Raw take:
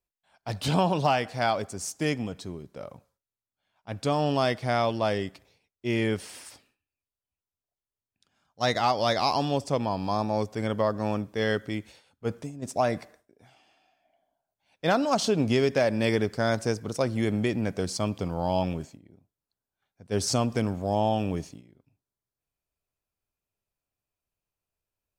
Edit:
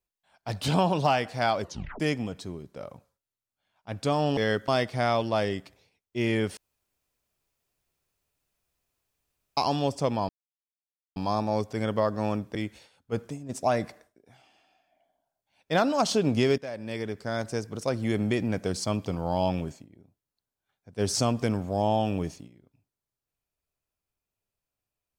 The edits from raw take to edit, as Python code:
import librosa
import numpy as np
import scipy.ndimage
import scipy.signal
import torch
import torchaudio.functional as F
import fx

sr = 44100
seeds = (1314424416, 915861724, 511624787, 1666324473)

y = fx.edit(x, sr, fx.tape_stop(start_s=1.61, length_s=0.39),
    fx.room_tone_fill(start_s=6.26, length_s=3.0),
    fx.insert_silence(at_s=9.98, length_s=0.87),
    fx.move(start_s=11.37, length_s=0.31, to_s=4.37),
    fx.fade_in_from(start_s=15.71, length_s=1.69, floor_db=-15.5), tone=tone)